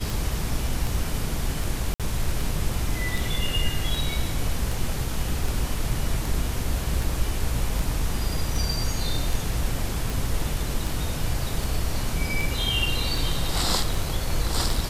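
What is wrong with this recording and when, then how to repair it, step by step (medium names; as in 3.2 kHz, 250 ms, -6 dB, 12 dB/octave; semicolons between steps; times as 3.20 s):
tick 78 rpm
1.94–2.00 s: dropout 57 ms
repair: de-click; interpolate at 1.94 s, 57 ms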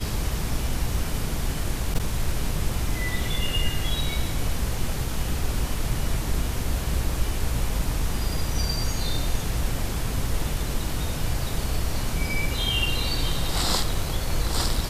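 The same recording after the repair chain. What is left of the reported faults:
nothing left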